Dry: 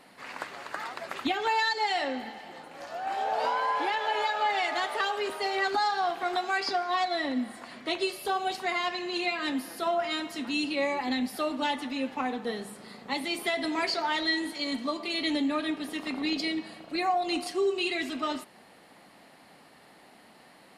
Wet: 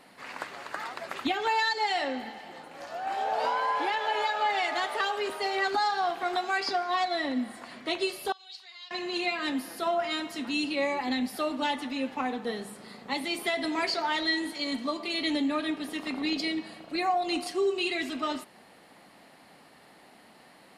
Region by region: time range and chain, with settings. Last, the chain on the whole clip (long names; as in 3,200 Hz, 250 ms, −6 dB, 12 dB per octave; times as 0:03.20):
0:08.32–0:08.91: downward compressor 4 to 1, threshold −31 dBFS + resonant band-pass 4,200 Hz, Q 3.1
whole clip: no processing